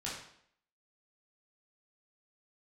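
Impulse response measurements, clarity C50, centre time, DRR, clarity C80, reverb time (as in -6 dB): 2.5 dB, 48 ms, -7.0 dB, 6.5 dB, 0.65 s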